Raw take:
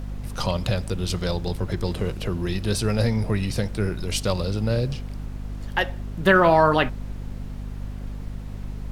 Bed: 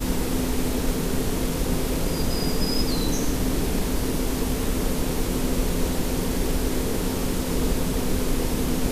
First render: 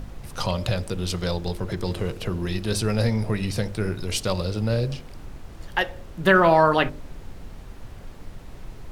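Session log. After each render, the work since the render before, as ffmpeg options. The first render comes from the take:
-af "bandreject=f=50:t=h:w=4,bandreject=f=100:t=h:w=4,bandreject=f=150:t=h:w=4,bandreject=f=200:t=h:w=4,bandreject=f=250:t=h:w=4,bandreject=f=300:t=h:w=4,bandreject=f=350:t=h:w=4,bandreject=f=400:t=h:w=4,bandreject=f=450:t=h:w=4,bandreject=f=500:t=h:w=4,bandreject=f=550:t=h:w=4,bandreject=f=600:t=h:w=4"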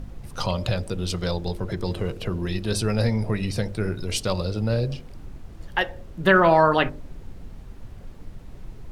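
-af "afftdn=nr=6:nf=-42"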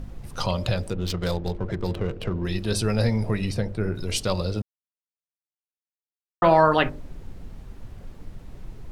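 -filter_complex "[0:a]asettb=1/sr,asplit=3[a][b][c];[a]atrim=end=0.904[d];[b]atrim=start=0.9:end=2.45,asetpts=PTS-STARTPTS,afade=t=in:d=0.004:c=qsin,afade=t=out:st=1.546:d=0.004:c=qsin,adynamicsmooth=sensitivity=7.5:basefreq=1.5k[e];[c]atrim=start=2.446[f];[d][e]acrossfade=d=0.004:c1=hsin:c2=qsin[g];[g][f]acrossfade=d=0.004:c1=qsin:c2=hsin,asplit=3[h][i][j];[h]afade=t=out:st=3.53:d=0.02[k];[i]highshelf=f=2.7k:g=-10,afade=t=in:st=3.53:d=0.02,afade=t=out:st=3.94:d=0.02[l];[j]afade=t=in:st=3.94:d=0.02[m];[k][l][m]amix=inputs=3:normalize=0,asplit=3[n][o][p];[n]atrim=end=4.62,asetpts=PTS-STARTPTS,afade=t=out:st=4.616:d=0.004:c=hsin[q];[o]atrim=start=4.62:end=6.42,asetpts=PTS-STARTPTS,volume=0[r];[p]atrim=start=6.42,asetpts=PTS-STARTPTS,afade=t=in:d=0.004:c=hsin[s];[q][r][s]concat=n=3:v=0:a=1"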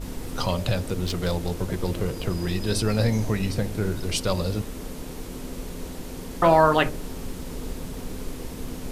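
-filter_complex "[1:a]volume=-11dB[a];[0:a][a]amix=inputs=2:normalize=0"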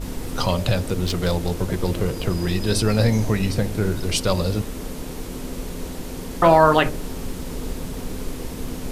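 -af "volume=4dB,alimiter=limit=-3dB:level=0:latency=1"

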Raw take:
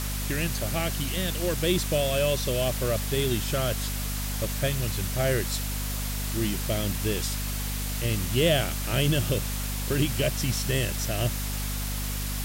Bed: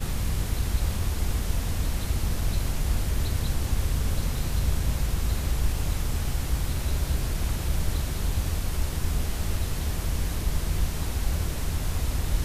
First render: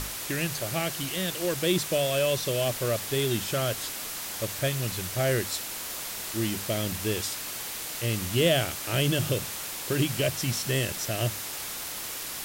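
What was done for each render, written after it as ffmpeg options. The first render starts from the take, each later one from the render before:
-af "bandreject=f=50:t=h:w=6,bandreject=f=100:t=h:w=6,bandreject=f=150:t=h:w=6,bandreject=f=200:t=h:w=6,bandreject=f=250:t=h:w=6"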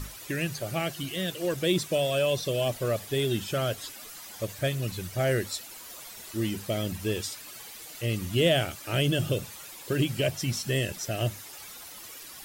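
-af "afftdn=nr=12:nf=-36"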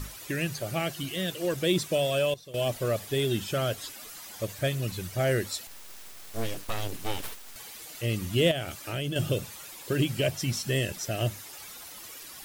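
-filter_complex "[0:a]asettb=1/sr,asplit=3[a][b][c];[a]atrim=end=5.674[d];[b]atrim=start=5.67:end=7.56,asetpts=PTS-STARTPTS,afade=t=in:d=0.004:c=qsin,afade=t=out:st=1.886:d=0.004:c=qsin,aeval=exprs='abs(val(0))':c=same[e];[c]atrim=start=7.556[f];[d][e]acrossfade=d=0.004:c1=hsin:c2=qsin[g];[g][f]acrossfade=d=0.004:c1=qsin:c2=hsin,asettb=1/sr,asplit=3[h][i][j];[h]atrim=end=8.514[k];[i]atrim=start=8.51:end=9.16,asetpts=PTS-STARTPTS,afade=t=in:d=0.004:c=qsin,afade=t=out:st=0.646:d=0.004:c=qsin,acompressor=threshold=-30dB:ratio=3:attack=3.2:release=140:knee=1:detection=peak[l];[j]atrim=start=9.156[m];[k][l]acrossfade=d=0.004:c1=hsin:c2=qsin[n];[n][m]acrossfade=d=0.004:c1=qsin:c2=hsin,asplit=3[o][p][q];[o]atrim=end=2.34,asetpts=PTS-STARTPTS,afade=t=out:st=2.09:d=0.25:c=log:silence=0.149624[r];[p]atrim=start=2.34:end=2.54,asetpts=PTS-STARTPTS,volume=-16.5dB[s];[q]atrim=start=2.54,asetpts=PTS-STARTPTS,afade=t=in:d=0.25:c=log:silence=0.149624[t];[r][s][t]concat=n=3:v=0:a=1"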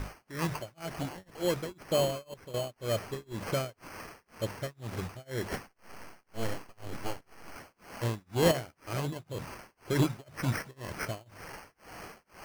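-af "tremolo=f=2:d=0.99,acrusher=samples=12:mix=1:aa=0.000001"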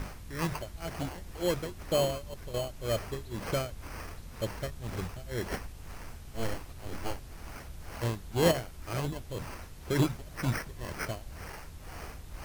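-filter_complex "[1:a]volume=-19dB[a];[0:a][a]amix=inputs=2:normalize=0"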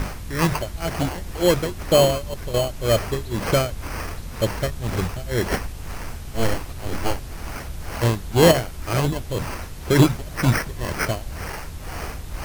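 -af "volume=12dB,alimiter=limit=-3dB:level=0:latency=1"

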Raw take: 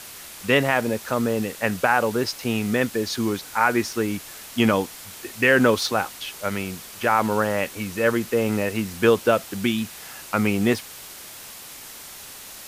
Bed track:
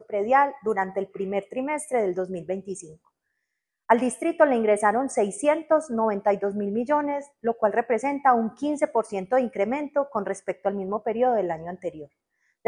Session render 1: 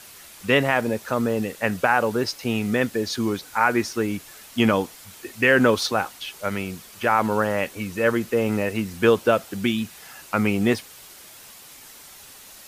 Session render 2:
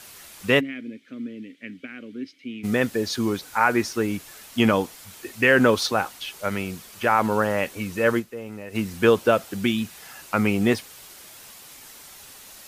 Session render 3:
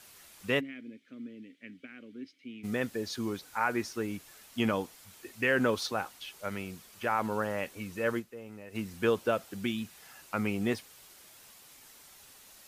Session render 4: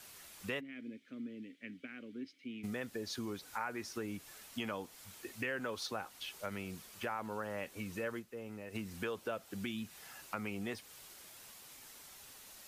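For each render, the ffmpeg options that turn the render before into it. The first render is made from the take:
-af "afftdn=nr=6:nf=-41"
-filter_complex "[0:a]asplit=3[a][b][c];[a]afade=t=out:st=0.59:d=0.02[d];[b]asplit=3[e][f][g];[e]bandpass=f=270:t=q:w=8,volume=0dB[h];[f]bandpass=f=2.29k:t=q:w=8,volume=-6dB[i];[g]bandpass=f=3.01k:t=q:w=8,volume=-9dB[j];[h][i][j]amix=inputs=3:normalize=0,afade=t=in:st=0.59:d=0.02,afade=t=out:st=2.63:d=0.02[k];[c]afade=t=in:st=2.63:d=0.02[l];[d][k][l]amix=inputs=3:normalize=0,asplit=3[m][n][o];[m]atrim=end=8.44,asetpts=PTS-STARTPTS,afade=t=out:st=8.19:d=0.25:c=exp:silence=0.211349[p];[n]atrim=start=8.44:end=8.51,asetpts=PTS-STARTPTS,volume=-13.5dB[q];[o]atrim=start=8.51,asetpts=PTS-STARTPTS,afade=t=in:d=0.25:c=exp:silence=0.211349[r];[p][q][r]concat=n=3:v=0:a=1"
-af "volume=-10dB"
-filter_complex "[0:a]acrossover=split=500|3500[a][b][c];[a]alimiter=level_in=5dB:limit=-24dB:level=0:latency=1,volume=-5dB[d];[d][b][c]amix=inputs=3:normalize=0,acompressor=threshold=-39dB:ratio=3"

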